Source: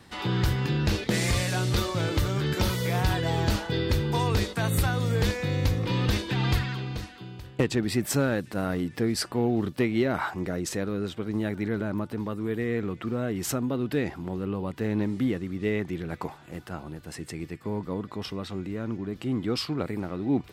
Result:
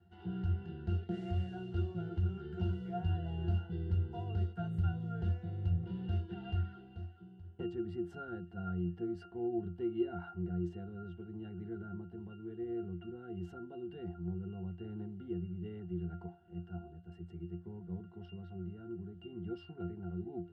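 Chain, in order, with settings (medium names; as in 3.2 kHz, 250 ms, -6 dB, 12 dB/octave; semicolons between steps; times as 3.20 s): pitch-class resonator F, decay 0.25 s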